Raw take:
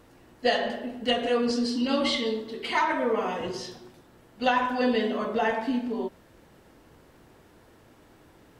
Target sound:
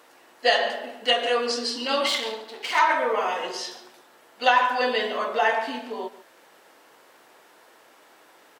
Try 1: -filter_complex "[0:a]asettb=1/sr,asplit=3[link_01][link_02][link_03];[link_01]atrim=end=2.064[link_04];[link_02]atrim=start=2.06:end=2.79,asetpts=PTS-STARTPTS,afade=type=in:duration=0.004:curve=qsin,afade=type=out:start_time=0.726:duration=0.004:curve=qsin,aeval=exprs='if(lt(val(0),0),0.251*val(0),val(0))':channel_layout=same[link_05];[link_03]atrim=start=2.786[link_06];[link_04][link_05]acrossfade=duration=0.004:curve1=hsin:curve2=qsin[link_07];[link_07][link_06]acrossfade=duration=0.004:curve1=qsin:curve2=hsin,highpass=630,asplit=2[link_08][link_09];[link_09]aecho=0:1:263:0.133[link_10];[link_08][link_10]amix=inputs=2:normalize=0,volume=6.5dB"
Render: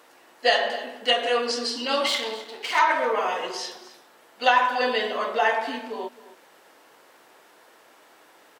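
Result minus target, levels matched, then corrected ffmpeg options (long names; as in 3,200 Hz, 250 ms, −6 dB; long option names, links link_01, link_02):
echo 121 ms late
-filter_complex "[0:a]asettb=1/sr,asplit=3[link_01][link_02][link_03];[link_01]atrim=end=2.064[link_04];[link_02]atrim=start=2.06:end=2.79,asetpts=PTS-STARTPTS,afade=type=in:duration=0.004:curve=qsin,afade=type=out:start_time=0.726:duration=0.004:curve=qsin,aeval=exprs='if(lt(val(0),0),0.251*val(0),val(0))':channel_layout=same[link_05];[link_03]atrim=start=2.786[link_06];[link_04][link_05]acrossfade=duration=0.004:curve1=hsin:curve2=qsin[link_07];[link_07][link_06]acrossfade=duration=0.004:curve1=qsin:curve2=hsin,highpass=630,asplit=2[link_08][link_09];[link_09]aecho=0:1:142:0.133[link_10];[link_08][link_10]amix=inputs=2:normalize=0,volume=6.5dB"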